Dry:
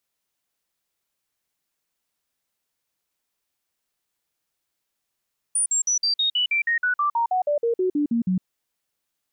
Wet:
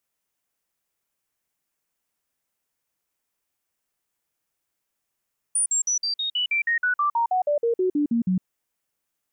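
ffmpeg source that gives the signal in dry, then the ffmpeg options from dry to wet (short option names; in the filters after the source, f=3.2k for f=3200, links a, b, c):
-f lavfi -i "aevalsrc='0.119*clip(min(mod(t,0.16),0.11-mod(t,0.16))/0.005,0,1)*sin(2*PI*9390*pow(2,-floor(t/0.16)/3)*mod(t,0.16))':d=2.88:s=44100"
-af "equalizer=f=4k:t=o:w=0.75:g=-5.5"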